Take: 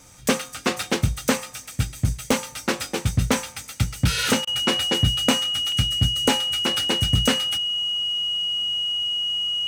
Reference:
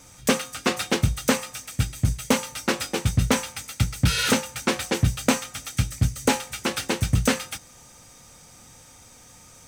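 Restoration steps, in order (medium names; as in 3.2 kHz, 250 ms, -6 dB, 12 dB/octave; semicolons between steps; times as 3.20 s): band-stop 2.9 kHz, Q 30; interpolate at 0.49/0.83/2.31/5.72 s, 2.4 ms; interpolate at 4.45 s, 21 ms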